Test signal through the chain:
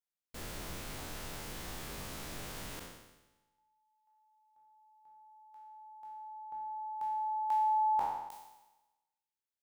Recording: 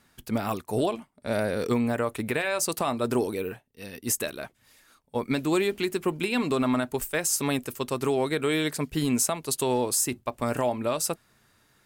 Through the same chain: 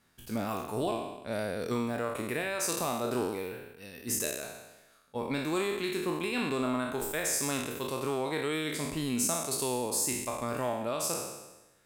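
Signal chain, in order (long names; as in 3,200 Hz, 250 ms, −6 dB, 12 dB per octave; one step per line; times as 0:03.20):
peak hold with a decay on every bin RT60 1.07 s
level −8 dB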